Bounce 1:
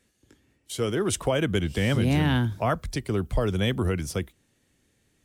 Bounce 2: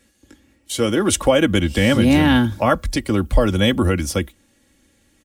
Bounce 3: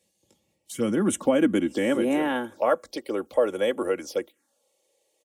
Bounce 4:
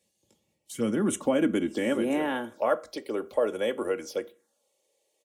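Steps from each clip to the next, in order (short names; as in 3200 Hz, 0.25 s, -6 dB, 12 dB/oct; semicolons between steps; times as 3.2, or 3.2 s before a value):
comb 3.6 ms, depth 61%; gain +8 dB
envelope phaser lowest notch 250 Hz, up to 4600 Hz, full sweep at -14.5 dBFS; high-pass sweep 170 Hz -> 460 Hz, 0.89–2.32; gain -8.5 dB
reverb RT60 0.35 s, pre-delay 4 ms, DRR 11.5 dB; gain -3 dB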